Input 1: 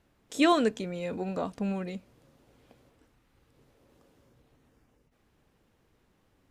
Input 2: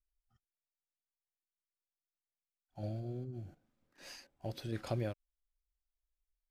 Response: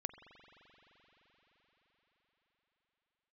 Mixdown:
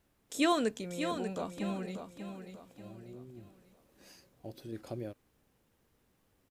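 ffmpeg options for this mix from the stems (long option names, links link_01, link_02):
-filter_complex "[0:a]volume=-5.5dB,asplit=3[link_01][link_02][link_03];[link_02]volume=-8dB[link_04];[1:a]equalizer=frequency=330:width_type=o:width=1.8:gain=10,volume=-10dB[link_05];[link_03]apad=whole_len=286665[link_06];[link_05][link_06]sidechaincompress=threshold=-52dB:ratio=8:attack=16:release=1430[link_07];[link_04]aecho=0:1:590|1180|1770|2360|2950:1|0.38|0.144|0.0549|0.0209[link_08];[link_01][link_07][link_08]amix=inputs=3:normalize=0,highshelf=frequency=7800:gain=12"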